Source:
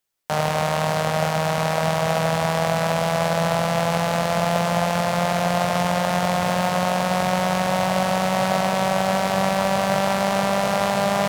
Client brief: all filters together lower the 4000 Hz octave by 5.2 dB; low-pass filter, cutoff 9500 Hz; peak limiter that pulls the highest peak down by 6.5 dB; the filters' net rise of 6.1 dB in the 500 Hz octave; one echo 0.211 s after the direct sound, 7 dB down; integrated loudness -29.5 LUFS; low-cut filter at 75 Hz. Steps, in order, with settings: HPF 75 Hz; LPF 9500 Hz; bell 500 Hz +8 dB; bell 4000 Hz -7 dB; limiter -10.5 dBFS; echo 0.211 s -7 dB; gain -10 dB

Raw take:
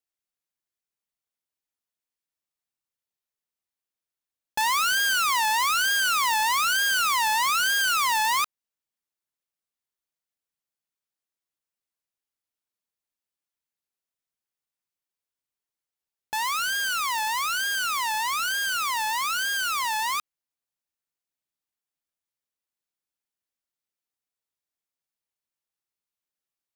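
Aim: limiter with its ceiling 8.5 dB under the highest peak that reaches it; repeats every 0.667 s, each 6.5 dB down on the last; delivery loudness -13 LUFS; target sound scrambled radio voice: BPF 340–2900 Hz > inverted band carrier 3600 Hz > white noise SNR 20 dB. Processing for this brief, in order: limiter -26.5 dBFS; BPF 340–2900 Hz; feedback echo 0.667 s, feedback 47%, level -6.5 dB; inverted band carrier 3600 Hz; white noise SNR 20 dB; gain +17.5 dB

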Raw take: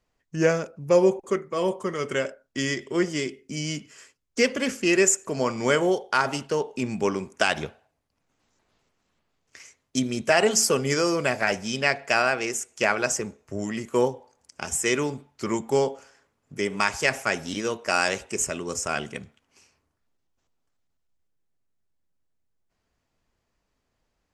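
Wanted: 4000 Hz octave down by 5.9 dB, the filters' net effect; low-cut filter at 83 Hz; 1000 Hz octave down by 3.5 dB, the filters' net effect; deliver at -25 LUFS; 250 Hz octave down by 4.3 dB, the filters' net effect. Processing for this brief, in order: HPF 83 Hz; bell 250 Hz -6 dB; bell 1000 Hz -4 dB; bell 4000 Hz -9 dB; gain +3 dB

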